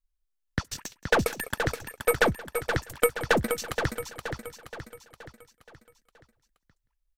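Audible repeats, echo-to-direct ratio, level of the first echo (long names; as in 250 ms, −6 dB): 8, −5.5 dB, −21.0 dB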